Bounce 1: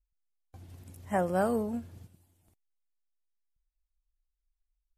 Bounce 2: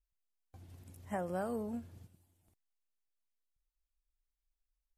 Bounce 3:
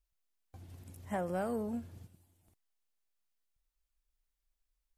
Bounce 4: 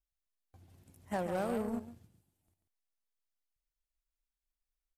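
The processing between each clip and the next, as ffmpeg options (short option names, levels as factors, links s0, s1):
-af "acompressor=threshold=0.0355:ratio=4,volume=0.562"
-af "asoftclip=type=tanh:threshold=0.0376,volume=1.41"
-af "aecho=1:1:139:0.398,aeval=exprs='0.0531*(cos(1*acos(clip(val(0)/0.0531,-1,1)))-cos(1*PI/2))+0.00473*(cos(7*acos(clip(val(0)/0.0531,-1,1)))-cos(7*PI/2))':c=same"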